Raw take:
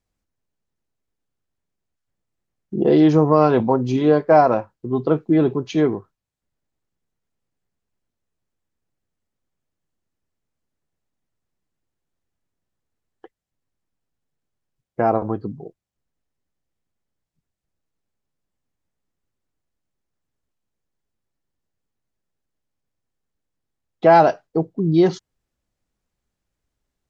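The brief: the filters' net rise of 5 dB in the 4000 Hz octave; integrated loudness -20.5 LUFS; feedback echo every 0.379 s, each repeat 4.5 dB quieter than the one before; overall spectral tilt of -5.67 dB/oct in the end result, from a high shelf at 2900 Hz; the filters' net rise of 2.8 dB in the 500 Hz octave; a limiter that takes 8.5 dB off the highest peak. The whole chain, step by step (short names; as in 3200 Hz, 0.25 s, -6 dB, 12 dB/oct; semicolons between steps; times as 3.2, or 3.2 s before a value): bell 500 Hz +3.5 dB; high shelf 2900 Hz +3.5 dB; bell 4000 Hz +3.5 dB; limiter -8.5 dBFS; feedback echo 0.379 s, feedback 60%, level -4.5 dB; gain -1 dB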